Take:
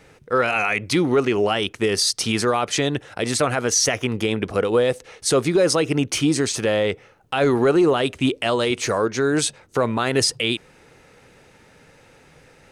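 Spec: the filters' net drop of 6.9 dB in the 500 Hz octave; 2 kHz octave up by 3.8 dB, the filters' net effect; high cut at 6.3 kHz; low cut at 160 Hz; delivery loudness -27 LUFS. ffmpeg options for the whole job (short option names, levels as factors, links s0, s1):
-af "highpass=160,lowpass=6300,equalizer=f=500:t=o:g=-9,equalizer=f=2000:t=o:g=5.5,volume=0.596"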